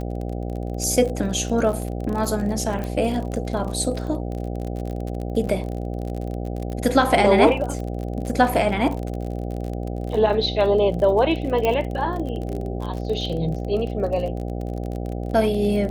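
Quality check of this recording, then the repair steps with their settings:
buzz 60 Hz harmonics 13 -28 dBFS
crackle 35/s -28 dBFS
2.84 pop
5.47 gap 4.7 ms
11.65 pop -10 dBFS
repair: de-click; de-hum 60 Hz, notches 13; interpolate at 5.47, 4.7 ms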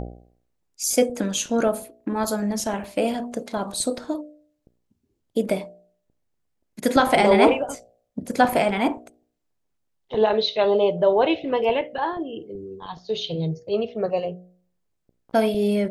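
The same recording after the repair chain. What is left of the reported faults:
2.84 pop
11.65 pop

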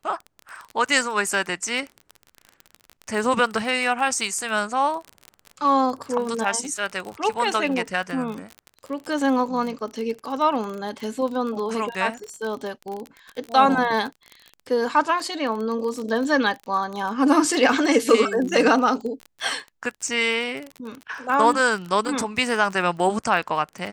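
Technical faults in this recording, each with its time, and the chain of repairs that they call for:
crackle 32/s -28 dBFS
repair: de-click

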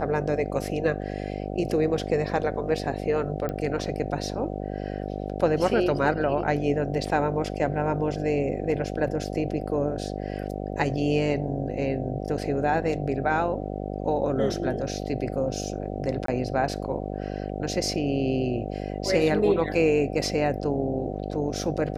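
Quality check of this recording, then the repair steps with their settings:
buzz 50 Hz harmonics 15 -32 dBFS
3.49 pop -19 dBFS
16.26–16.28 gap 23 ms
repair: de-click; de-hum 50 Hz, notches 15; interpolate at 16.26, 23 ms

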